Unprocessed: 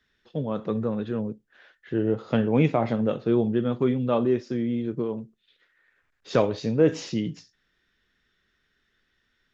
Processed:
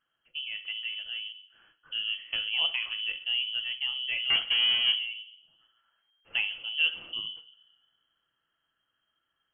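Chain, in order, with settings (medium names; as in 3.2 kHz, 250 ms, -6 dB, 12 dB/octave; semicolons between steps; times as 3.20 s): 4.30–4.96 s: waveshaping leveller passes 5; reverberation RT60 0.75 s, pre-delay 6 ms, DRR 11 dB; frequency inversion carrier 3.2 kHz; trim -9 dB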